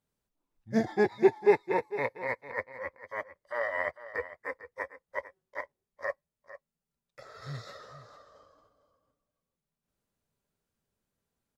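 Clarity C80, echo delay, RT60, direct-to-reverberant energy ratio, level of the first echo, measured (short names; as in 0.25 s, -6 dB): none, 0.451 s, none, none, -14.5 dB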